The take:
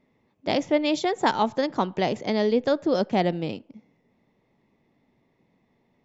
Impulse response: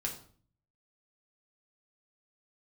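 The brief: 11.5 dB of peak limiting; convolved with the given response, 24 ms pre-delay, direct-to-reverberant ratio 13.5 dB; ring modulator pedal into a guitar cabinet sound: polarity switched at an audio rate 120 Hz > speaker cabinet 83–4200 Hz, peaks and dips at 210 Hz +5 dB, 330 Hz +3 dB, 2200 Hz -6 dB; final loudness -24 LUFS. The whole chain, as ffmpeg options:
-filter_complex "[0:a]alimiter=limit=-18.5dB:level=0:latency=1,asplit=2[a][b];[1:a]atrim=start_sample=2205,adelay=24[c];[b][c]afir=irnorm=-1:irlink=0,volume=-15dB[d];[a][d]amix=inputs=2:normalize=0,aeval=exprs='val(0)*sgn(sin(2*PI*120*n/s))':c=same,highpass=83,equalizer=f=210:t=q:w=4:g=5,equalizer=f=330:t=q:w=4:g=3,equalizer=f=2.2k:t=q:w=4:g=-6,lowpass=f=4.2k:w=0.5412,lowpass=f=4.2k:w=1.3066,volume=4.5dB"

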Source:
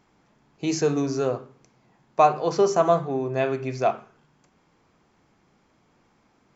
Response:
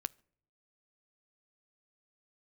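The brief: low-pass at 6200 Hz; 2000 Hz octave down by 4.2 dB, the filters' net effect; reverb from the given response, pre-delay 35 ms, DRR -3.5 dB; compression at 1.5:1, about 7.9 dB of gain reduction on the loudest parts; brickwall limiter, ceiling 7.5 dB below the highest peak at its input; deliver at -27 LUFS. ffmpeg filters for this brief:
-filter_complex "[0:a]lowpass=6.2k,equalizer=f=2k:t=o:g=-6,acompressor=threshold=-36dB:ratio=1.5,alimiter=limit=-21dB:level=0:latency=1,asplit=2[a][b];[1:a]atrim=start_sample=2205,adelay=35[c];[b][c]afir=irnorm=-1:irlink=0,volume=4.5dB[d];[a][d]amix=inputs=2:normalize=0"

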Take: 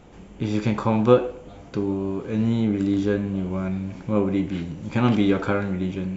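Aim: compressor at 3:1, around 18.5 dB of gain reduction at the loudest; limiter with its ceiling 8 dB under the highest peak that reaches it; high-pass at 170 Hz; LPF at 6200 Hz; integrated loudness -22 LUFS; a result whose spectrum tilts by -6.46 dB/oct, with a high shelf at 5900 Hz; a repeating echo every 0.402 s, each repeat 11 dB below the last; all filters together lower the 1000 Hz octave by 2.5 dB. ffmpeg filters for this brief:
-af "highpass=170,lowpass=6.2k,equalizer=f=1k:t=o:g=-3.5,highshelf=f=5.9k:g=8,acompressor=threshold=-36dB:ratio=3,alimiter=level_in=4.5dB:limit=-24dB:level=0:latency=1,volume=-4.5dB,aecho=1:1:402|804|1206:0.282|0.0789|0.0221,volume=16dB"

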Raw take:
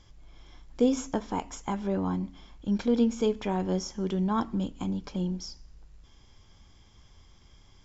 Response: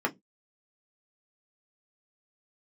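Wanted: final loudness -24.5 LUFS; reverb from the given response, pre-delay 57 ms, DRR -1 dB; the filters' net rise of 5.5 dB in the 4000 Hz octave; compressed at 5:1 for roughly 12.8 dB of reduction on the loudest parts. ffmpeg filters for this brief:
-filter_complex "[0:a]equalizer=f=4k:t=o:g=8,acompressor=threshold=-33dB:ratio=5,asplit=2[a][b];[1:a]atrim=start_sample=2205,adelay=57[c];[b][c]afir=irnorm=-1:irlink=0,volume=-8.5dB[d];[a][d]amix=inputs=2:normalize=0,volume=9.5dB"

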